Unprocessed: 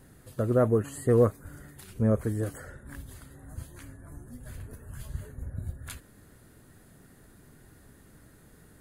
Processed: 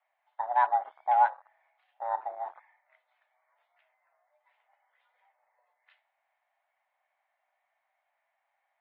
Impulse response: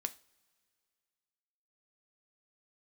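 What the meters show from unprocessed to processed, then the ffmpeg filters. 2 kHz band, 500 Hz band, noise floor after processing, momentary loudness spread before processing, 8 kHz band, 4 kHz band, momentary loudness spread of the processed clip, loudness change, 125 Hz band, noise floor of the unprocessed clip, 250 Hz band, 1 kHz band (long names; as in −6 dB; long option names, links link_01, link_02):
+4.5 dB, −14.0 dB, −81 dBFS, 23 LU, below −30 dB, can't be measured, 16 LU, −1.0 dB, below −40 dB, −57 dBFS, below −40 dB, +15.5 dB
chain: -filter_complex "[0:a]highpass=frequency=340:width_type=q:width=0.5412,highpass=frequency=340:width_type=q:width=1.307,lowpass=frequency=3000:width_type=q:width=0.5176,lowpass=frequency=3000:width_type=q:width=0.7071,lowpass=frequency=3000:width_type=q:width=1.932,afreqshift=360[link_01];[1:a]atrim=start_sample=2205[link_02];[link_01][link_02]afir=irnorm=-1:irlink=0,afwtdn=0.0126"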